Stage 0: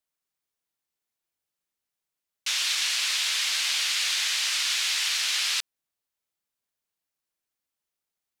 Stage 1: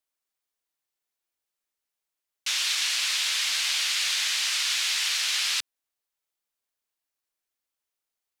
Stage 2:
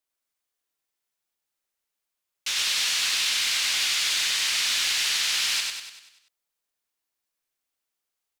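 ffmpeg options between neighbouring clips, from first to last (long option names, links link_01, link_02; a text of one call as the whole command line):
ffmpeg -i in.wav -af "equalizer=frequency=140:width_type=o:width=1.2:gain=-13" out.wav
ffmpeg -i in.wav -filter_complex "[0:a]asoftclip=type=hard:threshold=-21.5dB,asplit=2[link_01][link_02];[link_02]aecho=0:1:97|194|291|388|485|582|679:0.708|0.361|0.184|0.0939|0.0479|0.0244|0.0125[link_03];[link_01][link_03]amix=inputs=2:normalize=0" out.wav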